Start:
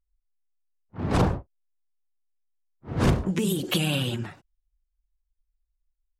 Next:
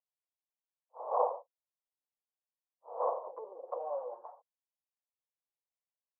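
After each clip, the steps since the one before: Chebyshev band-pass 490–1100 Hz, order 4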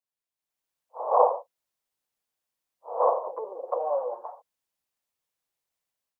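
AGC gain up to 10 dB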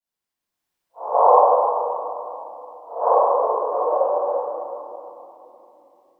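reverb, pre-delay 3 ms, DRR -20.5 dB; gain -13.5 dB

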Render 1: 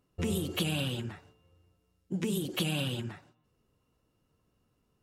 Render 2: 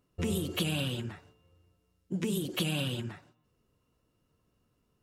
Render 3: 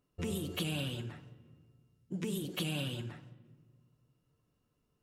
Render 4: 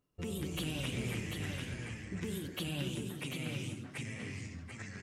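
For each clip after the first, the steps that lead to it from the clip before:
notch 800 Hz, Q 17
shoebox room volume 1300 m³, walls mixed, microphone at 0.39 m; gain -5 dB
echoes that change speed 0.154 s, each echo -3 st, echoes 3; on a send: echo 0.741 s -5 dB; on the sum: gain -3 dB

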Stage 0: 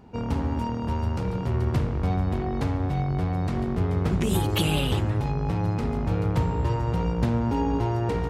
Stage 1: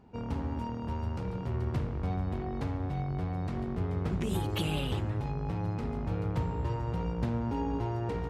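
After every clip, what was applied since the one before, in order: high shelf 5600 Hz -5.5 dB; gain -7.5 dB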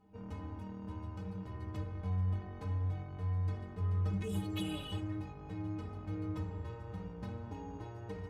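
metallic resonator 92 Hz, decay 0.4 s, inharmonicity 0.03; gain +3 dB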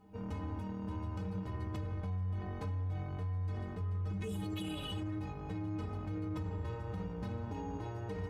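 limiter -36.5 dBFS, peak gain reduction 11.5 dB; gain +5 dB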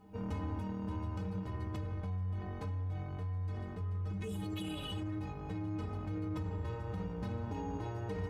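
vocal rider 2 s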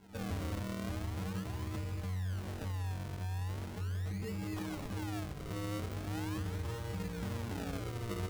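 decimation with a swept rate 36×, swing 100% 0.4 Hz

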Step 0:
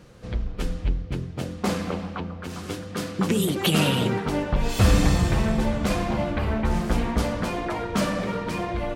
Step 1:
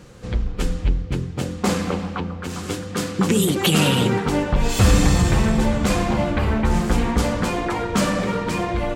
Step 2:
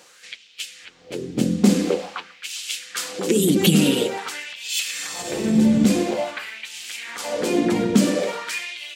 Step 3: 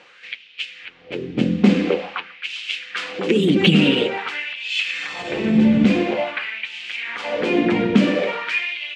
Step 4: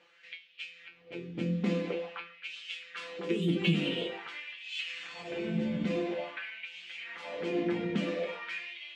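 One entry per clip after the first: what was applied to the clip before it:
bell 7400 Hz +5 dB 0.44 oct; notch 640 Hz, Q 12; in parallel at -2 dB: limiter -14.5 dBFS, peak gain reduction 7 dB
bell 1100 Hz -14.5 dB 1.6 oct; compressor 3:1, threshold -22 dBFS, peak gain reduction 9 dB; LFO high-pass sine 0.48 Hz 200–2900 Hz; gain +5.5 dB
synth low-pass 2600 Hz, resonance Q 2; gain +1.5 dB
resonator 170 Hz, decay 0.26 s, harmonics all, mix 90%; gain -4 dB

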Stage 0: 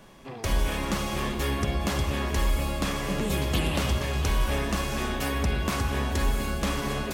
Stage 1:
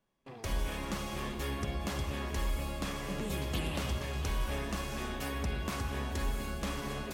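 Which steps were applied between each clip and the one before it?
gate with hold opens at -34 dBFS; gain -8.5 dB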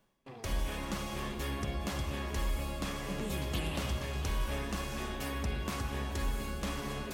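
de-hum 82.51 Hz, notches 31; reverse; upward compressor, threshold -43 dBFS; reverse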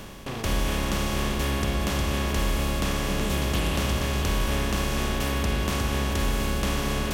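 per-bin compression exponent 0.4; gain +5 dB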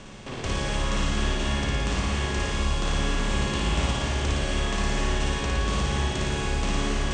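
Chebyshev low-pass 8600 Hz, order 6; flutter echo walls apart 9.7 m, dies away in 1.3 s; gain -3 dB

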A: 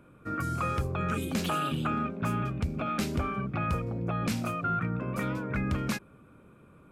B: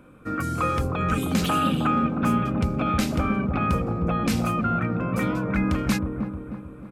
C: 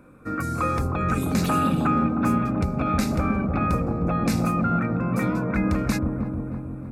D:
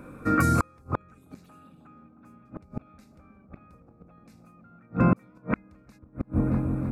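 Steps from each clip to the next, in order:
comb 3.9 ms, depth 30%; dark delay 0.312 s, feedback 49%, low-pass 820 Hz, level -3.5 dB; gain +5.5 dB
bell 3100 Hz -15 dB 0.23 oct; analogue delay 0.167 s, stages 1024, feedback 73%, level -9 dB; ending taper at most 180 dB/s
flipped gate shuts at -16 dBFS, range -37 dB; gain +6 dB

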